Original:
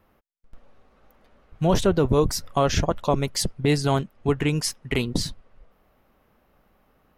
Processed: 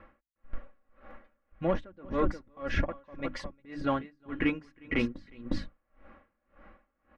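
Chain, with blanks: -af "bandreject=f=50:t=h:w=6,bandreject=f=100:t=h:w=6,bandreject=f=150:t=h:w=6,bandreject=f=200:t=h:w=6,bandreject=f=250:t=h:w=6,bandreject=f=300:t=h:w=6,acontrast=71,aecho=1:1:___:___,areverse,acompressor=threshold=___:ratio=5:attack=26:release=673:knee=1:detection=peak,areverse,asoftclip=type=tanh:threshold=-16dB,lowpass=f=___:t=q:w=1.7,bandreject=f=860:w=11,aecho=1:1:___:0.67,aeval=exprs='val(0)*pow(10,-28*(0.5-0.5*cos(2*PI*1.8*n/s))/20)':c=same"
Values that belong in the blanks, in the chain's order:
358, 0.299, -24dB, 1900, 3.6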